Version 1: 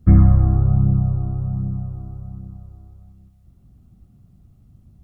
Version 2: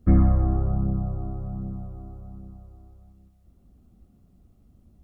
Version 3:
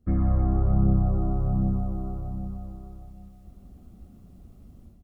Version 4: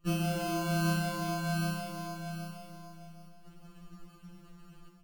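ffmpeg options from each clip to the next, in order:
-af "equalizer=f=125:t=o:w=1:g=-11,equalizer=f=250:t=o:w=1:g=3,equalizer=f=500:t=o:w=1:g=5,volume=-3dB"
-af "dynaudnorm=f=180:g=3:m=16dB,aecho=1:1:303|606|909|1212|1515|1818:0.237|0.13|0.0717|0.0395|0.0217|0.0119,volume=-8.5dB"
-af "acrusher=samples=31:mix=1:aa=0.000001,afftfilt=real='re*2.83*eq(mod(b,8),0)':imag='im*2.83*eq(mod(b,8),0)':win_size=2048:overlap=0.75,volume=1.5dB"

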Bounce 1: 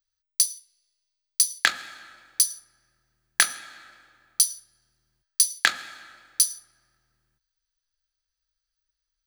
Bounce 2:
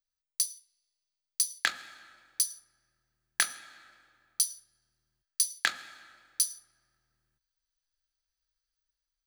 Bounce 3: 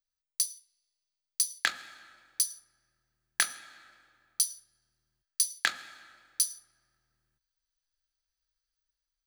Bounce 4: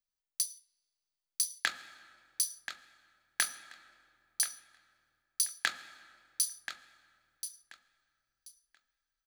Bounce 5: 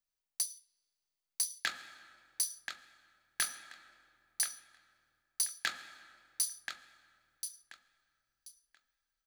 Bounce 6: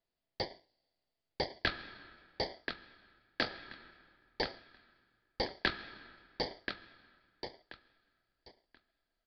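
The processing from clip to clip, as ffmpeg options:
-af "dynaudnorm=f=370:g=5:m=5dB,volume=-8dB"
-af anull
-af "aecho=1:1:1032|2064|3096:0.316|0.0664|0.0139,volume=-3.5dB"
-af "asoftclip=type=tanh:threshold=-22dB"
-filter_complex "[0:a]asplit=2[a][b];[b]acrusher=samples=33:mix=1:aa=0.000001,volume=-5dB[c];[a][c]amix=inputs=2:normalize=0,aresample=11025,aresample=44100,volume=1.5dB"

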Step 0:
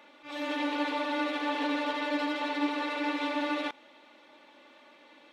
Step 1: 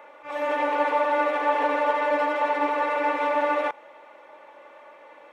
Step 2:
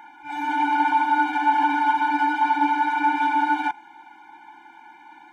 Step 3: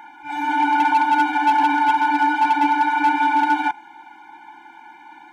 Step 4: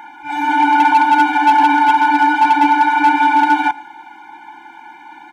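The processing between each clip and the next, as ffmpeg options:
-af "equalizer=f=125:t=o:w=1:g=4,equalizer=f=250:t=o:w=1:g=-11,equalizer=f=500:t=o:w=1:g=10,equalizer=f=1k:t=o:w=1:g=7,equalizer=f=2k:t=o:w=1:g=4,equalizer=f=4k:t=o:w=1:g=-12,volume=2.5dB"
-af "afftfilt=real='re*eq(mod(floor(b*sr/1024/350),2),0)':imag='im*eq(mod(floor(b*sr/1024/350),2),0)':win_size=1024:overlap=0.75,volume=6dB"
-af "asoftclip=type=hard:threshold=-14.5dB,volume=3.5dB"
-af "aecho=1:1:114|228|342:0.0708|0.0297|0.0125,volume=5.5dB"

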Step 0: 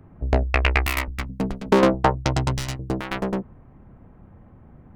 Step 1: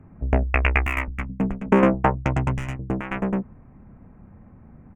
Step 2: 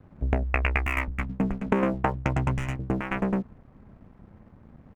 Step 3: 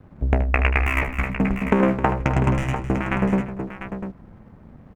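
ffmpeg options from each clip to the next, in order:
-af "firequalizer=gain_entry='entry(140,0);entry(210,4);entry(330,-2);entry(2500,1);entry(4100,-30);entry(6700,-10);entry(12000,-17)':delay=0.05:min_phase=1"
-af "acompressor=threshold=-20dB:ratio=6,aeval=exprs='sgn(val(0))*max(abs(val(0))-0.00224,0)':c=same"
-af "aecho=1:1:76|263|345|697:0.299|0.251|0.1|0.335,volume=4.5dB"

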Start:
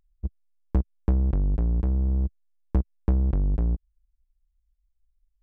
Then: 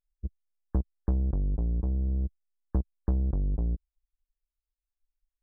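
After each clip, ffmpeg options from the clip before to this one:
-af "afftdn=nr=17:nf=-43,volume=-4.5dB"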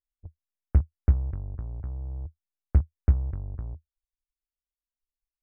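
-af "aeval=exprs='0.106*(cos(1*acos(clip(val(0)/0.106,-1,1)))-cos(1*PI/2))+0.0422*(cos(3*acos(clip(val(0)/0.106,-1,1)))-cos(3*PI/2))':c=same,equalizer=f=80:w=1.7:g=14"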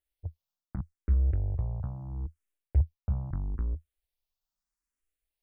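-filter_complex "[0:a]areverse,acompressor=threshold=-27dB:ratio=8,areverse,asplit=2[a][b];[b]afreqshift=0.77[c];[a][c]amix=inputs=2:normalize=1,volume=7dB"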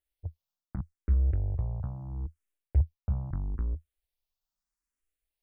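-af anull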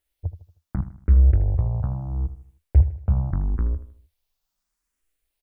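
-af "aecho=1:1:78|156|234|312:0.224|0.094|0.0395|0.0166,volume=9dB"

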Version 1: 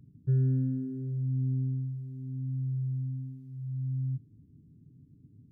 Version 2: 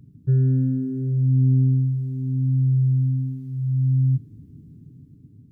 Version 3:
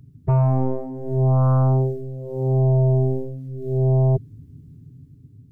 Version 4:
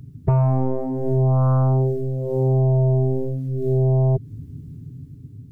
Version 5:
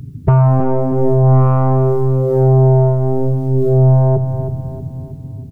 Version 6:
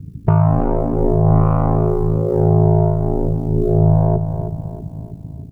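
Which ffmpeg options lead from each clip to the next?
-af "dynaudnorm=f=430:g=5:m=6dB,volume=7dB"
-af "equalizer=f=200:t=o:w=0.33:g=-12,equalizer=f=315:t=o:w=0.33:g=-7,equalizer=f=500:t=o:w=0.33:g=-5,aeval=exprs='0.224*(cos(1*acos(clip(val(0)/0.224,-1,1)))-cos(1*PI/2))+0.0178*(cos(6*acos(clip(val(0)/0.224,-1,1)))-cos(6*PI/2))+0.0794*(cos(7*acos(clip(val(0)/0.224,-1,1)))-cos(7*PI/2))':c=same"
-af "acompressor=threshold=-23dB:ratio=4,volume=7dB"
-af "aeval=exprs='0.398*(cos(1*acos(clip(val(0)/0.398,-1,1)))-cos(1*PI/2))+0.0282*(cos(5*acos(clip(val(0)/0.398,-1,1)))-cos(5*PI/2))':c=same,aecho=1:1:318|636|954|1272|1590:0.355|0.16|0.0718|0.0323|0.0145,volume=6.5dB"
-af "aeval=exprs='val(0)*sin(2*PI*27*n/s)':c=same"

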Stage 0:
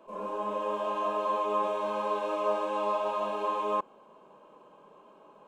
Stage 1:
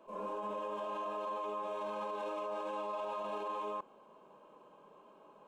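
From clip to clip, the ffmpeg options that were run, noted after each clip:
-af "alimiter=level_in=4dB:limit=-24dB:level=0:latency=1:release=18,volume=-4dB,volume=-4dB"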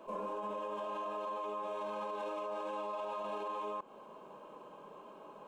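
-af "acompressor=threshold=-44dB:ratio=6,volume=7dB"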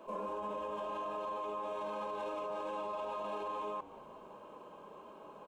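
-filter_complex "[0:a]asplit=5[a][b][c][d][e];[b]adelay=179,afreqshift=-130,volume=-18dB[f];[c]adelay=358,afreqshift=-260,volume=-25.1dB[g];[d]adelay=537,afreqshift=-390,volume=-32.3dB[h];[e]adelay=716,afreqshift=-520,volume=-39.4dB[i];[a][f][g][h][i]amix=inputs=5:normalize=0"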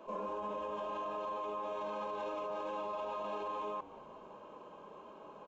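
-af "aresample=16000,aresample=44100"

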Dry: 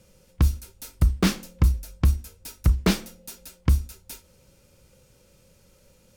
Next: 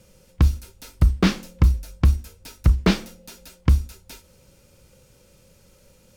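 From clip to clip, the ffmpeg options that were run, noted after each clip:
-filter_complex "[0:a]acrossover=split=5500[a][b];[b]acompressor=threshold=-47dB:ratio=4:attack=1:release=60[c];[a][c]amix=inputs=2:normalize=0,volume=3dB"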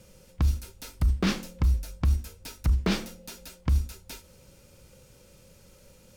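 -af "alimiter=limit=-16dB:level=0:latency=1:release=14"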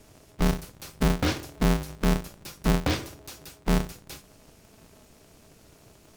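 -af "aeval=exprs='val(0)*sgn(sin(2*PI*110*n/s))':c=same"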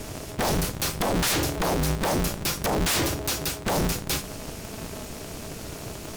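-af "aeval=exprs='0.168*sin(PI/2*8.91*val(0)/0.168)':c=same,volume=-5dB"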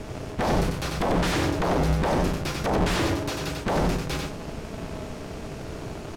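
-af "aemphasis=mode=reproduction:type=75fm,aecho=1:1:94:0.668"

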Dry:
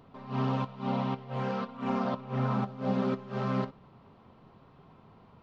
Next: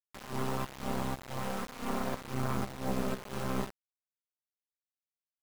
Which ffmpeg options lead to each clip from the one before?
-af "acrusher=bits=4:dc=4:mix=0:aa=0.000001"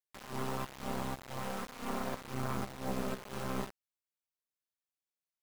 -af "lowshelf=f=340:g=-2.5,volume=-2dB"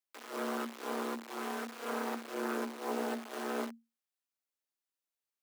-af "afreqshift=230"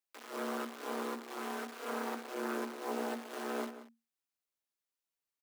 -filter_complex "[0:a]asplit=2[a][b];[b]adelay=180.8,volume=-13dB,highshelf=f=4k:g=-4.07[c];[a][c]amix=inputs=2:normalize=0,volume=-1.5dB"

